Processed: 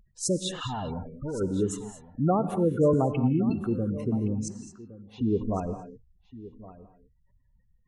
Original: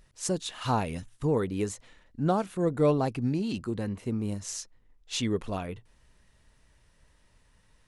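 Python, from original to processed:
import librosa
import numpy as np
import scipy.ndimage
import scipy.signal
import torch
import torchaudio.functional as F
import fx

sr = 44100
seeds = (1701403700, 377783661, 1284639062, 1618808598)

p1 = fx.overload_stage(x, sr, gain_db=34.5, at=(0.67, 1.41))
p2 = fx.leveller(p1, sr, passes=1)
p3 = fx.bandpass_q(p2, sr, hz=780.0, q=3.0, at=(4.48, 5.21))
p4 = fx.spec_gate(p3, sr, threshold_db=-15, keep='strong')
p5 = p4 + fx.echo_single(p4, sr, ms=1116, db=-17.5, dry=0)
p6 = fx.rev_gated(p5, sr, seeds[0], gate_ms=250, shape='rising', drr_db=9.5)
y = fx.band_squash(p6, sr, depth_pct=70, at=(2.93, 3.5))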